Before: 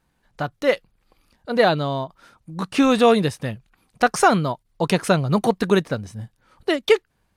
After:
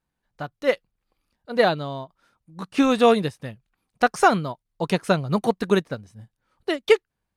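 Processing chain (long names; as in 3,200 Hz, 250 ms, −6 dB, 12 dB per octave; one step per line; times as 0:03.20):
expander for the loud parts 1.5 to 1, over −36 dBFS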